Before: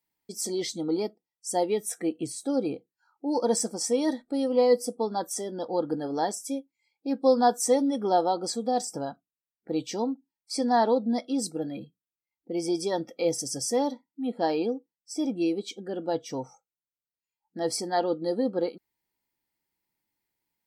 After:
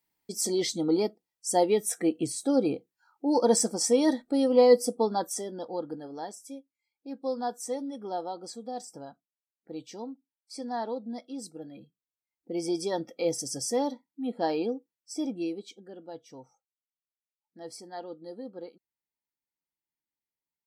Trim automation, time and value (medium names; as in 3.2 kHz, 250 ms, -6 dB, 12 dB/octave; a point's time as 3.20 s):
5.05 s +2.5 dB
6.14 s -10.5 dB
11.75 s -10.5 dB
12.51 s -2 dB
15.15 s -2 dB
16.07 s -14 dB